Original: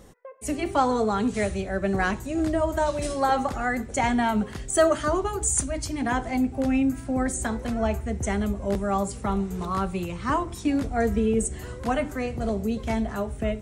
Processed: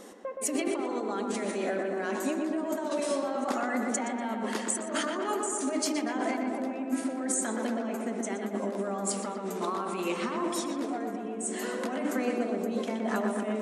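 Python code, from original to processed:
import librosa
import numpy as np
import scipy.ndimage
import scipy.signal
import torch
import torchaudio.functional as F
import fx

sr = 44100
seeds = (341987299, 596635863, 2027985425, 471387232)

y = fx.over_compress(x, sr, threshold_db=-32.0, ratio=-1.0)
y = fx.brickwall_bandpass(y, sr, low_hz=200.0, high_hz=13000.0)
y = fx.echo_filtered(y, sr, ms=121, feedback_pct=78, hz=2600.0, wet_db=-4.0)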